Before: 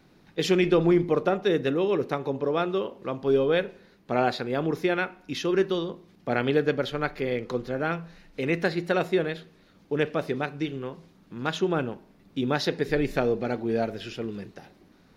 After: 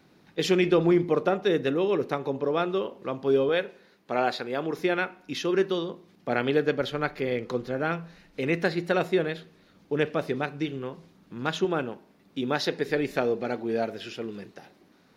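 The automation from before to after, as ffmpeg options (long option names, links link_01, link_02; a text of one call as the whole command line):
ffmpeg -i in.wav -af "asetnsamples=nb_out_samples=441:pad=0,asendcmd='3.49 highpass f 370;4.79 highpass f 150;6.81 highpass f 56;11.65 highpass f 230',highpass=frequency=110:poles=1" out.wav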